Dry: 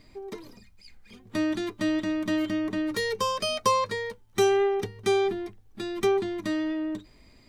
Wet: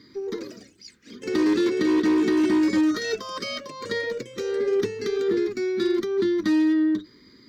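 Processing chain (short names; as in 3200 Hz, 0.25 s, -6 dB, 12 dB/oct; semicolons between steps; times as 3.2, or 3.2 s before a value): weighting filter A; negative-ratio compressor -32 dBFS, ratio -1; fixed phaser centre 2600 Hz, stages 6; echoes that change speed 0.139 s, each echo +3 st, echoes 3, each echo -6 dB; resonant low shelf 510 Hz +9.5 dB, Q 1.5; added harmonics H 6 -35 dB, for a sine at -20.5 dBFS; gain +4 dB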